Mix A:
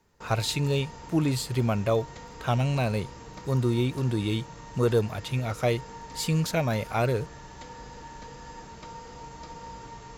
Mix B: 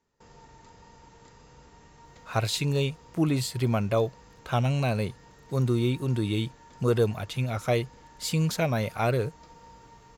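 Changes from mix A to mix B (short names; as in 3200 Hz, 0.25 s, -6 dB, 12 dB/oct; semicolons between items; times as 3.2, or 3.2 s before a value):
speech: entry +2.05 s; background -9.0 dB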